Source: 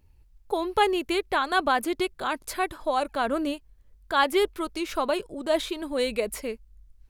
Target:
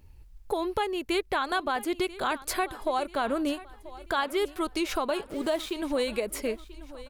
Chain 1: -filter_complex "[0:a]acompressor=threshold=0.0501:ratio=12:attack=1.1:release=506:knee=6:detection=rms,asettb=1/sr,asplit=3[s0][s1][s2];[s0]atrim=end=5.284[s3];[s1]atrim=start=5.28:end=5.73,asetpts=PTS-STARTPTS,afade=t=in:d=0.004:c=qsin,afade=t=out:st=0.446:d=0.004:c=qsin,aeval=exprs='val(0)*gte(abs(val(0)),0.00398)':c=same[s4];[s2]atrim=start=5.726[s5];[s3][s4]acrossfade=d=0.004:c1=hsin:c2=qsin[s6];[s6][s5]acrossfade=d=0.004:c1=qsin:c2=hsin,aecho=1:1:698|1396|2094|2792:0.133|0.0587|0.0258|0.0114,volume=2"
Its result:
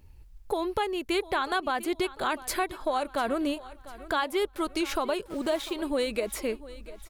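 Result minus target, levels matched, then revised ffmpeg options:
echo 289 ms early
-filter_complex "[0:a]acompressor=threshold=0.0501:ratio=12:attack=1.1:release=506:knee=6:detection=rms,asettb=1/sr,asplit=3[s0][s1][s2];[s0]atrim=end=5.284[s3];[s1]atrim=start=5.28:end=5.73,asetpts=PTS-STARTPTS,afade=t=in:d=0.004:c=qsin,afade=t=out:st=0.446:d=0.004:c=qsin,aeval=exprs='val(0)*gte(abs(val(0)),0.00398)':c=same[s4];[s2]atrim=start=5.726[s5];[s3][s4]acrossfade=d=0.004:c1=hsin:c2=qsin[s6];[s6][s5]acrossfade=d=0.004:c1=qsin:c2=hsin,aecho=1:1:987|1974|2961|3948:0.133|0.0587|0.0258|0.0114,volume=2"

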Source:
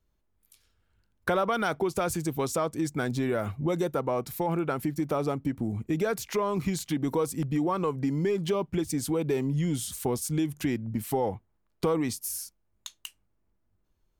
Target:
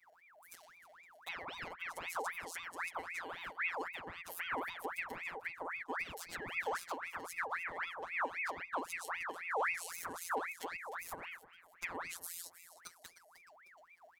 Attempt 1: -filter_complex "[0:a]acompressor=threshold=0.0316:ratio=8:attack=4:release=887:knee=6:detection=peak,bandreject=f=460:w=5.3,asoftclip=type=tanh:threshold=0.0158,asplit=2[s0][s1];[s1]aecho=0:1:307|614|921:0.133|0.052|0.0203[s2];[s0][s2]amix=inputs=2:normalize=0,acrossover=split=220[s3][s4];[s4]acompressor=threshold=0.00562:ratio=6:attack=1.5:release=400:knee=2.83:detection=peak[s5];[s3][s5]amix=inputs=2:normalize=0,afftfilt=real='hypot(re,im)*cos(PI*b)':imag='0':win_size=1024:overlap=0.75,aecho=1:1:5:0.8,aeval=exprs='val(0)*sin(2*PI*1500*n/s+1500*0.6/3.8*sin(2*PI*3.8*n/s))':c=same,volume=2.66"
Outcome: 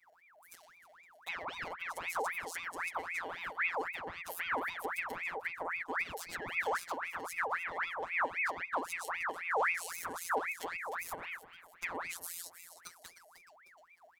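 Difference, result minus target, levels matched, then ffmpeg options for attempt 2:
compression: peak gain reduction -8 dB
-filter_complex "[0:a]acompressor=threshold=0.0112:ratio=8:attack=4:release=887:knee=6:detection=peak,bandreject=f=460:w=5.3,asoftclip=type=tanh:threshold=0.0158,asplit=2[s0][s1];[s1]aecho=0:1:307|614|921:0.133|0.052|0.0203[s2];[s0][s2]amix=inputs=2:normalize=0,acrossover=split=220[s3][s4];[s4]acompressor=threshold=0.00562:ratio=6:attack=1.5:release=400:knee=2.83:detection=peak[s5];[s3][s5]amix=inputs=2:normalize=0,afftfilt=real='hypot(re,im)*cos(PI*b)':imag='0':win_size=1024:overlap=0.75,aecho=1:1:5:0.8,aeval=exprs='val(0)*sin(2*PI*1500*n/s+1500*0.6/3.8*sin(2*PI*3.8*n/s))':c=same,volume=2.66"

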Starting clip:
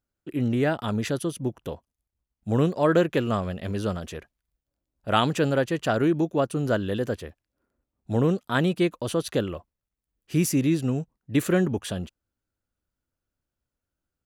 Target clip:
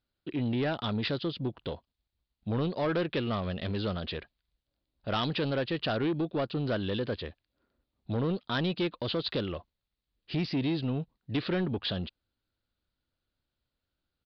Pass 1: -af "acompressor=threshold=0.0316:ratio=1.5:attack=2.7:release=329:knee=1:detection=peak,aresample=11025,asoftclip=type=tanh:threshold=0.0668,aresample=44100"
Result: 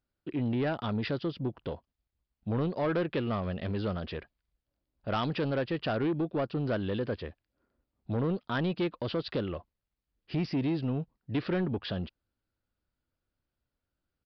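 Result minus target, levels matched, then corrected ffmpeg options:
4 kHz band -6.0 dB
-af "acompressor=threshold=0.0316:ratio=1.5:attack=2.7:release=329:knee=1:detection=peak,lowpass=f=4000:t=q:w=3.2,aresample=11025,asoftclip=type=tanh:threshold=0.0668,aresample=44100"

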